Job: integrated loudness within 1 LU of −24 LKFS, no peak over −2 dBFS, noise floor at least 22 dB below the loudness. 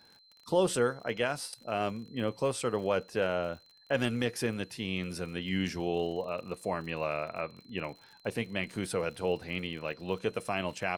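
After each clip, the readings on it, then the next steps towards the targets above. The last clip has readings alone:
crackle rate 47 per second; interfering tone 4,100 Hz; level of the tone −59 dBFS; integrated loudness −33.5 LKFS; sample peak −15.0 dBFS; target loudness −24.0 LKFS
→ click removal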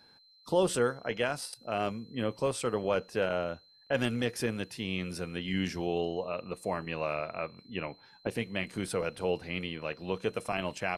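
crackle rate 0 per second; interfering tone 4,100 Hz; level of the tone −59 dBFS
→ notch filter 4,100 Hz, Q 30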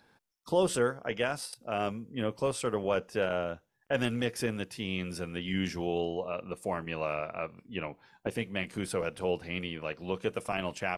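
interfering tone none found; integrated loudness −33.5 LKFS; sample peak −15.0 dBFS; target loudness −24.0 LKFS
→ level +9.5 dB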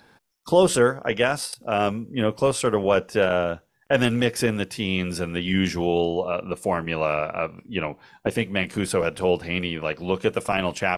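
integrated loudness −24.0 LKFS; sample peak −5.5 dBFS; background noise floor −65 dBFS

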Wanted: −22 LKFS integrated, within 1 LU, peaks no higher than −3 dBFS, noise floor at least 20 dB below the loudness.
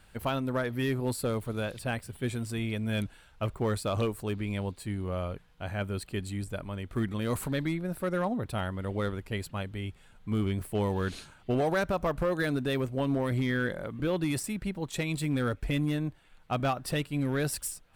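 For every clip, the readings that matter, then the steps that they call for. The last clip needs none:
share of clipped samples 1.0%; peaks flattened at −21.5 dBFS; integrated loudness −32.0 LKFS; sample peak −21.5 dBFS; target loudness −22.0 LKFS
→ clipped peaks rebuilt −21.5 dBFS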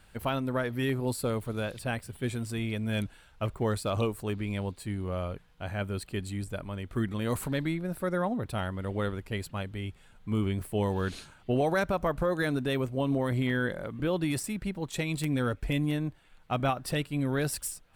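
share of clipped samples 0.0%; integrated loudness −31.5 LKFS; sample peak −14.5 dBFS; target loudness −22.0 LKFS
→ level +9.5 dB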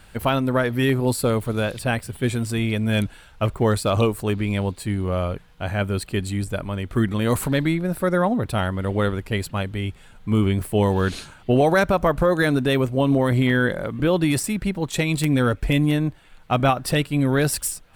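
integrated loudness −22.0 LKFS; sample peak −5.0 dBFS; background noise floor −48 dBFS

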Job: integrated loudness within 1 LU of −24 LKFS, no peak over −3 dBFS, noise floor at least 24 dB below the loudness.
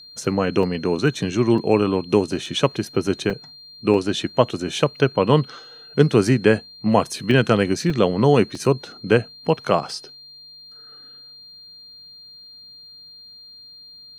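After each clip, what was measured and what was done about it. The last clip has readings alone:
number of dropouts 8; longest dropout 2.8 ms; interfering tone 4,200 Hz; level of the tone −41 dBFS; integrated loudness −20.5 LKFS; sample peak −1.0 dBFS; target loudness −24.0 LKFS
→ repair the gap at 0:00.63/0:01.58/0:02.46/0:03.30/0:03.94/0:07.31/0:07.90/0:08.55, 2.8 ms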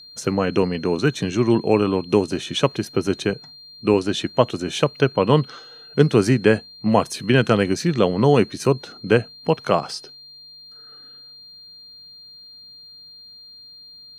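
number of dropouts 0; interfering tone 4,200 Hz; level of the tone −41 dBFS
→ notch filter 4,200 Hz, Q 30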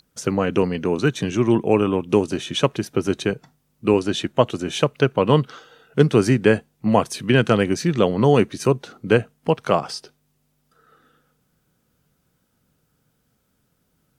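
interfering tone none found; integrated loudness −20.5 LKFS; sample peak −1.0 dBFS; target loudness −24.0 LKFS
→ level −3.5 dB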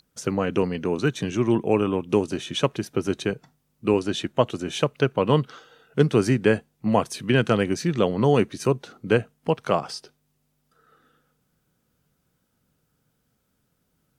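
integrated loudness −24.0 LKFS; sample peak −4.5 dBFS; background noise floor −72 dBFS

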